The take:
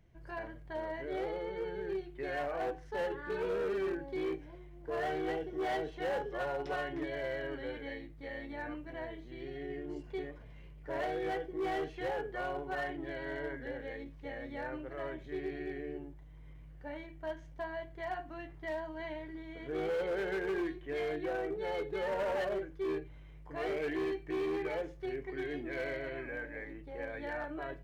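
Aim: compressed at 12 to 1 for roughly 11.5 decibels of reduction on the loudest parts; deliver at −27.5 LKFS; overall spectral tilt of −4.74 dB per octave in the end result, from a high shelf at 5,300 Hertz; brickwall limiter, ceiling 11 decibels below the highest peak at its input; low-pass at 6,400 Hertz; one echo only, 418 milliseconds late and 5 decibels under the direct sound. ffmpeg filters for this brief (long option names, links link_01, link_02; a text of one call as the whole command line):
ffmpeg -i in.wav -af "lowpass=6400,highshelf=frequency=5300:gain=-4.5,acompressor=threshold=-44dB:ratio=12,alimiter=level_in=22dB:limit=-24dB:level=0:latency=1,volume=-22dB,aecho=1:1:418:0.562,volume=24dB" out.wav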